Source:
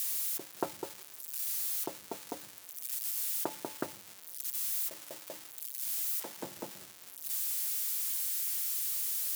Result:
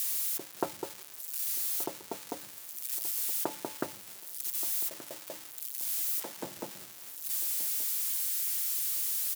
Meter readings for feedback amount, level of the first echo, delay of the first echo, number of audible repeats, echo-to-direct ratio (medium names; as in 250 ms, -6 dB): 32%, -16.0 dB, 1177 ms, 2, -15.5 dB